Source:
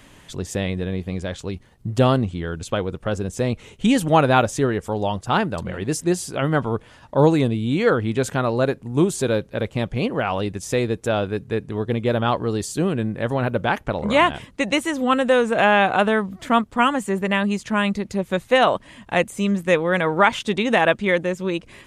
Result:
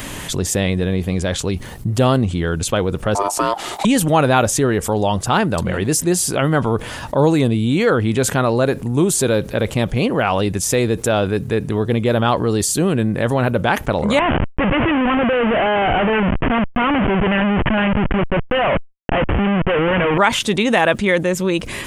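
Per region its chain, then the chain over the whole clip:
3.15–3.85 ring modulator 800 Hz + three-band squash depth 70%
14.19–20.18 G.711 law mismatch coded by A + Schmitt trigger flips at -34 dBFS + steep low-pass 3100 Hz 96 dB/oct
whole clip: high shelf 10000 Hz +11.5 dB; fast leveller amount 50%

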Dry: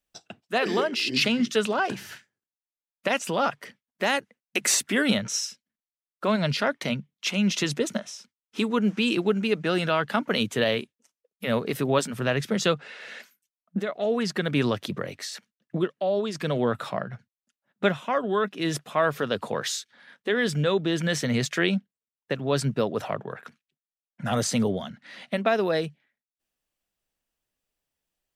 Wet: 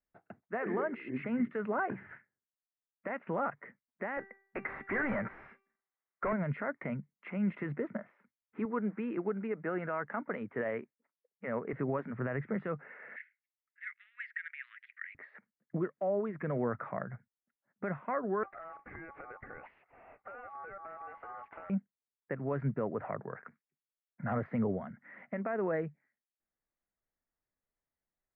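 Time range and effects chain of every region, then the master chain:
4.17–6.33 overdrive pedal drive 32 dB, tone 6600 Hz, clips at -8 dBFS + high shelf 4100 Hz -7 dB + resonator 390 Hz, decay 0.52 s, mix 70%
8.65–11.73 HPF 500 Hz 6 dB/oct + tilt -1.5 dB/oct
13.16–15.15 steep high-pass 1700 Hz 48 dB/oct + bell 3900 Hz +10.5 dB 2.8 oct
18.43–21.7 compressor 12:1, threshold -38 dBFS + power-law curve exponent 0.7 + ring modulator 980 Hz
whole clip: limiter -17 dBFS; Chebyshev low-pass 2100 Hz, order 5; gain -6 dB

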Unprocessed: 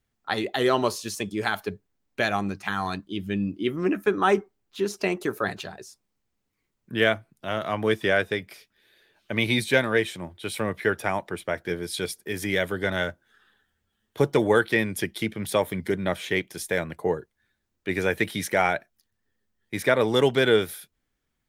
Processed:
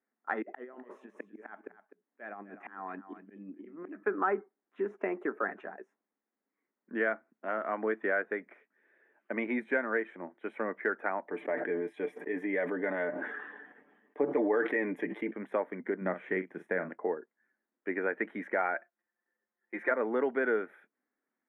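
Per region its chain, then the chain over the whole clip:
0.42–4.03 auto swell 0.598 s + negative-ratio compressor -38 dBFS, ratio -0.5 + echo 0.253 s -12.5 dB
11.26–15.31 bell 1400 Hz -12 dB 0.3 oct + comb 6.8 ms, depth 50% + sustainer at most 33 dB/s
16.01–16.89 bell 150 Hz +11.5 dB 1 oct + doubler 43 ms -11.5 dB
18.74–19.91 HPF 460 Hz 6 dB/oct + comb 5.7 ms, depth 72%
whole clip: elliptic band-pass 240–1900 Hz, stop band 40 dB; dynamic EQ 1400 Hz, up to +5 dB, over -40 dBFS, Q 4.5; compressor 2:1, threshold -27 dBFS; gain -3 dB

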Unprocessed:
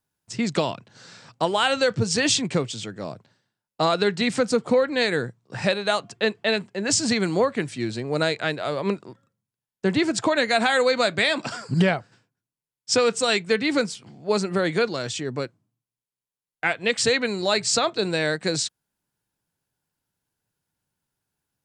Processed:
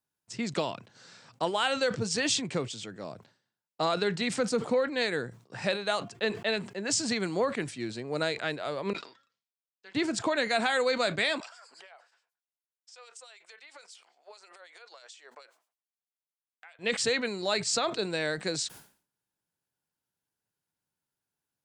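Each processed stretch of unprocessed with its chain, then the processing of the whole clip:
8.93–9.95 LPF 4600 Hz 24 dB/oct + differentiator + notch comb 180 Hz
11.4–16.79 HPF 620 Hz 24 dB/oct + compressor 20:1, threshold -37 dBFS + harmonic tremolo 9.3 Hz, crossover 2500 Hz
whole clip: low shelf 120 Hz -9.5 dB; sustainer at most 130 dB/s; gain -6.5 dB

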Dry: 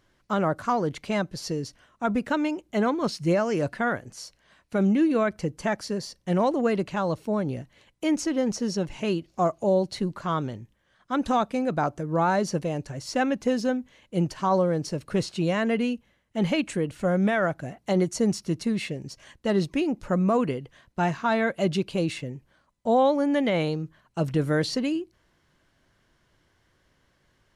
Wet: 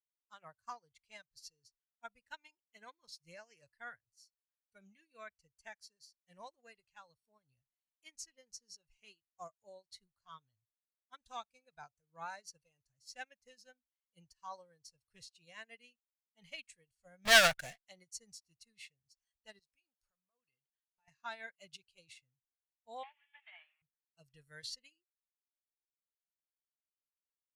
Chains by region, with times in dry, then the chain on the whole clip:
17.25–17.85 HPF 190 Hz + sample leveller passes 5
19.59–21.08 low shelf 160 Hz -11.5 dB + compressor 4:1, threshold -34 dBFS
23.03–23.82 delta modulation 16 kbps, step -29 dBFS + brick-wall FIR high-pass 600 Hz + Doppler distortion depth 0.24 ms
whole clip: spectral noise reduction 11 dB; passive tone stack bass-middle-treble 10-0-10; upward expander 2.5:1, over -48 dBFS; gain +4.5 dB

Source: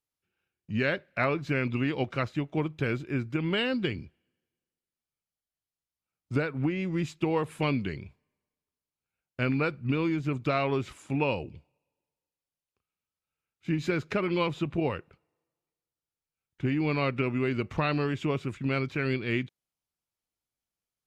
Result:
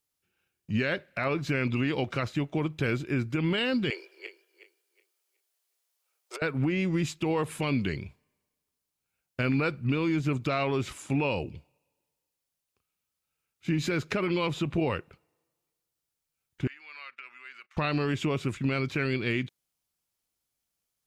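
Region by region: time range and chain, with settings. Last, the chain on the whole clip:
3.9–6.42 regenerating reverse delay 0.184 s, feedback 47%, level -10.5 dB + steep high-pass 370 Hz 72 dB/oct + negative-ratio compressor -40 dBFS
16.67–17.77 gate -36 dBFS, range -20 dB + compressor 16:1, threshold -40 dBFS + resonant high-pass 1500 Hz, resonance Q 1.8
whole clip: high shelf 4300 Hz +6.5 dB; limiter -22 dBFS; gain +3.5 dB

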